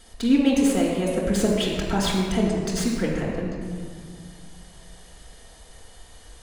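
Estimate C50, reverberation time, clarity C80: 0.5 dB, 1.9 s, 2.0 dB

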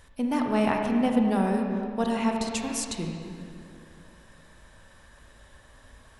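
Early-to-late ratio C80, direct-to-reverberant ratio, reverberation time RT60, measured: 3.5 dB, 1.5 dB, 2.5 s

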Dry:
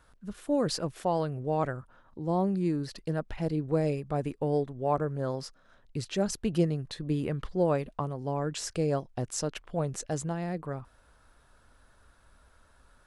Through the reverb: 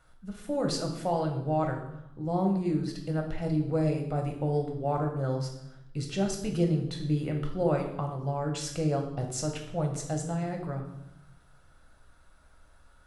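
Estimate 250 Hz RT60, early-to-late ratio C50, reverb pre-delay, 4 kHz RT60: 1.2 s, 7.0 dB, 5 ms, 0.70 s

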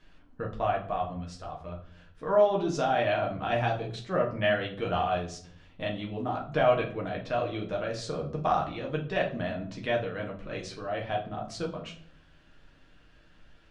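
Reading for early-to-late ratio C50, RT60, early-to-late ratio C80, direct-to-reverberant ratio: 9.5 dB, 0.55 s, 14.5 dB, -1.5 dB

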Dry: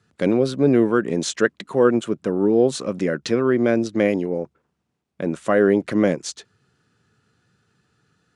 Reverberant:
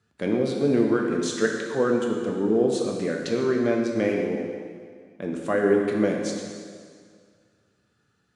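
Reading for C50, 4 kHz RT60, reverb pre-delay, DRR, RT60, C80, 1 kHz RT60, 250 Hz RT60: 2.5 dB, 1.9 s, 4 ms, 0.5 dB, 2.0 s, 4.0 dB, 2.0 s, 2.0 s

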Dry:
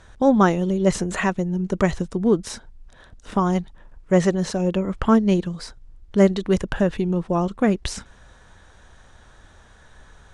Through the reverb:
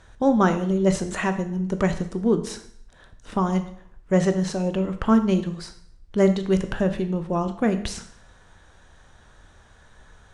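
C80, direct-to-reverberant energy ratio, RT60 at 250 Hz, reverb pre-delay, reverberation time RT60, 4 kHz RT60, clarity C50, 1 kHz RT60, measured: 14.5 dB, 8.0 dB, 0.65 s, 7 ms, 0.65 s, 0.60 s, 11.5 dB, 0.65 s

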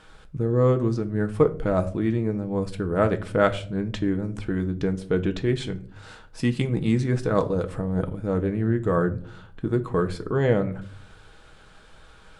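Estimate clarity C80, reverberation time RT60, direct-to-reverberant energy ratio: 21.0 dB, 0.50 s, 7.0 dB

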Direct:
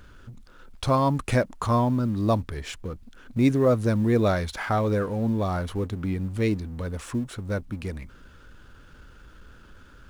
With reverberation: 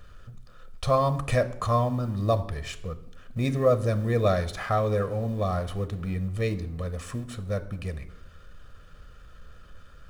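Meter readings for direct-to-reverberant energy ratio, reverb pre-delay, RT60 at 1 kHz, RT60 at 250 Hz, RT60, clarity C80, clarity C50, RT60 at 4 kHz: 11.0 dB, 3 ms, 0.80 s, 0.85 s, 0.85 s, 17.5 dB, 15.5 dB, 0.60 s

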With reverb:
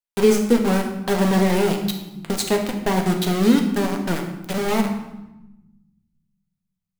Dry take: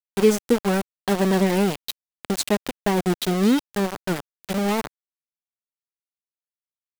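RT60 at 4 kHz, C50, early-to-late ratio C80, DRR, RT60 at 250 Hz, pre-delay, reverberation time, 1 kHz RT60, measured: 0.75 s, 7.0 dB, 8.5 dB, 2.5 dB, 1.7 s, 4 ms, 1.0 s, 1.0 s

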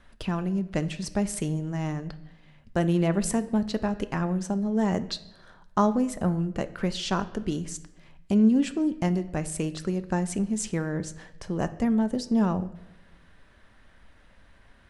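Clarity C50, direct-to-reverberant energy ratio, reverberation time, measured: 15.5 dB, 11.0 dB, 0.95 s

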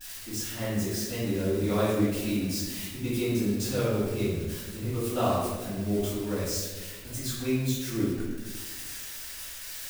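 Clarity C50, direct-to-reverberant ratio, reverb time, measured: -2.0 dB, -13.5 dB, 1.5 s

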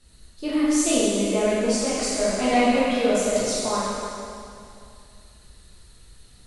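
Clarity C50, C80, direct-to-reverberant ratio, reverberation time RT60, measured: -3.5 dB, -1.5 dB, -9.5 dB, 2.5 s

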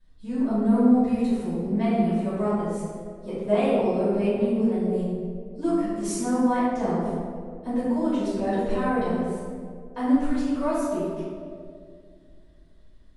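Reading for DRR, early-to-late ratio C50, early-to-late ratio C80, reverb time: -13.0 dB, -3.0 dB, -0.5 dB, 2.3 s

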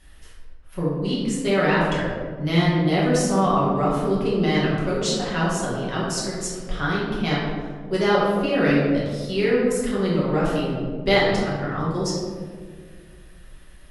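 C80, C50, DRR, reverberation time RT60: 2.0 dB, -0.5 dB, -8.0 dB, 1.9 s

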